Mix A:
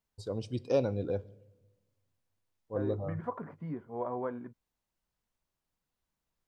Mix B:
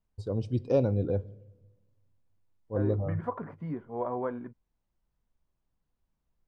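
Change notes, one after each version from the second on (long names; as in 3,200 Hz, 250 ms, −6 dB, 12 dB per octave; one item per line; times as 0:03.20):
first voice: add spectral tilt −2.5 dB per octave
second voice +3.0 dB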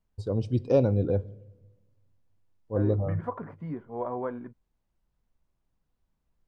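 first voice +3.0 dB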